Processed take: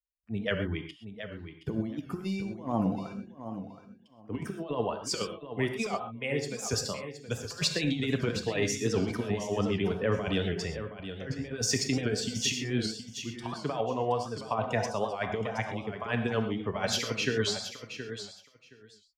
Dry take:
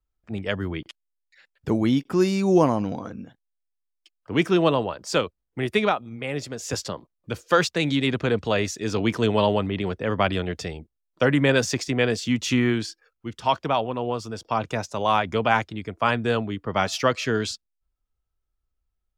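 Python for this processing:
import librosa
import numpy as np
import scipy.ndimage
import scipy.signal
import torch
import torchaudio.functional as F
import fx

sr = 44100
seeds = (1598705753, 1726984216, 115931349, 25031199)

y = fx.bin_expand(x, sr, power=1.5)
y = fx.highpass(y, sr, hz=140.0, slope=6)
y = fx.high_shelf(y, sr, hz=5200.0, db=-5.0)
y = fx.over_compress(y, sr, threshold_db=-30.0, ratio=-0.5)
y = fx.echo_feedback(y, sr, ms=721, feedback_pct=16, wet_db=-10.5)
y = fx.rev_gated(y, sr, seeds[0], gate_ms=150, shape='flat', drr_db=5.5)
y = fx.record_warp(y, sr, rpm=78.0, depth_cents=100.0)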